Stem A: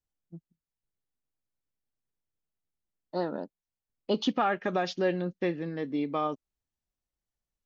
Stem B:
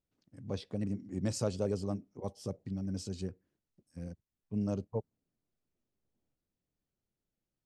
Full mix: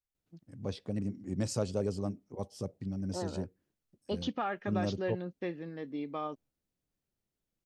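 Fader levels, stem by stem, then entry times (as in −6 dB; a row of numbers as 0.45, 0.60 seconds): −7.5, +0.5 decibels; 0.00, 0.15 seconds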